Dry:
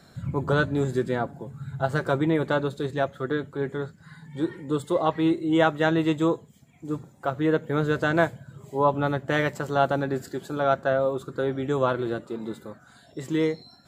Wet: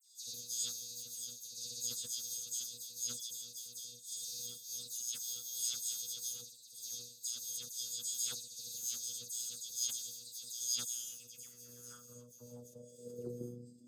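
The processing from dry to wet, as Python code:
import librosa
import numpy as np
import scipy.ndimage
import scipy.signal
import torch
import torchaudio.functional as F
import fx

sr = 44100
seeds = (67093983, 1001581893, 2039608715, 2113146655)

y = fx.bit_reversed(x, sr, seeds[0], block=128)
y = fx.recorder_agc(y, sr, target_db=-16.0, rise_db_per_s=58.0, max_gain_db=30)
y = scipy.signal.sosfilt(scipy.signal.cheby2(4, 50, [790.0, 2100.0], 'bandstop', fs=sr, output='sos'), y)
y = fx.peak_eq(y, sr, hz=6600.0, db=13.5, octaves=0.24)
y = 10.0 ** (-8.0 / 20.0) * np.tanh(y / 10.0 ** (-8.0 / 20.0))
y = fx.formant_shift(y, sr, semitones=3)
y = fx.filter_sweep_bandpass(y, sr, from_hz=3800.0, to_hz=300.0, start_s=10.77, end_s=13.49, q=5.7)
y = fx.robotise(y, sr, hz=121.0)
y = fx.dispersion(y, sr, late='lows', ms=109.0, hz=2700.0)
y = fx.sustainer(y, sr, db_per_s=70.0)
y = y * 10.0 ** (5.0 / 20.0)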